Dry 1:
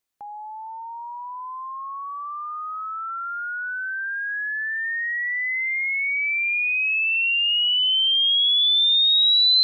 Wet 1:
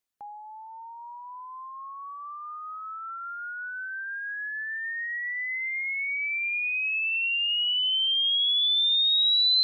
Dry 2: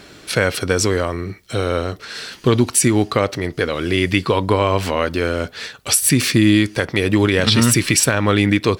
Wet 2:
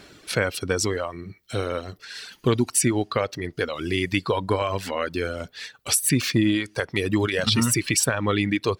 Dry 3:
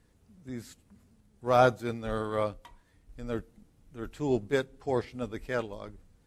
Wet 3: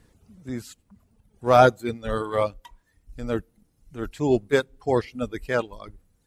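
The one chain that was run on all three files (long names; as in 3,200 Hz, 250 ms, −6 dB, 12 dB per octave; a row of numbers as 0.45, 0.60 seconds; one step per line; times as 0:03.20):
reverb reduction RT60 1.2 s
loudness normalisation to −24 LKFS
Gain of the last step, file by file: −4.0, −5.5, +7.5 decibels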